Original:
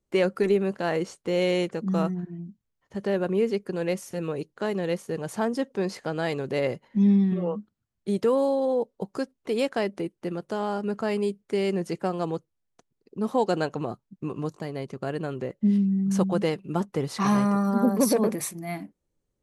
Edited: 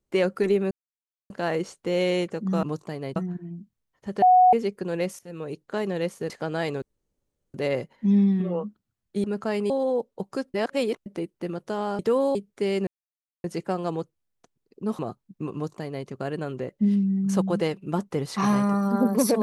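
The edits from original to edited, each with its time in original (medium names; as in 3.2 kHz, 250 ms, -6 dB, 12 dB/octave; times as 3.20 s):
0.71 s: insert silence 0.59 s
3.10–3.41 s: bleep 735 Hz -12 dBFS
4.07–4.50 s: fade in linear, from -16.5 dB
5.18–5.94 s: delete
6.46 s: insert room tone 0.72 s
8.16–8.52 s: swap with 10.81–11.27 s
9.36–9.88 s: reverse
11.79 s: insert silence 0.57 s
13.34–13.81 s: delete
14.36–14.89 s: copy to 2.04 s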